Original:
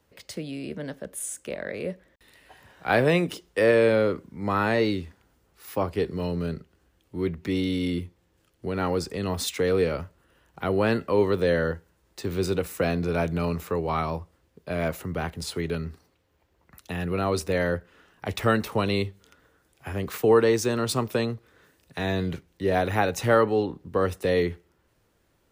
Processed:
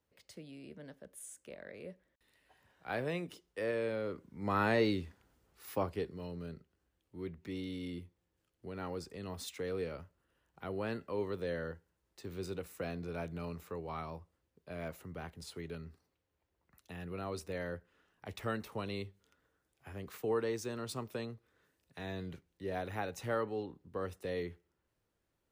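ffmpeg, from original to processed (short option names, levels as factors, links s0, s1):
-af "volume=0.473,afade=t=in:st=4.02:d=0.61:silence=0.334965,afade=t=out:st=5.7:d=0.44:silence=0.375837"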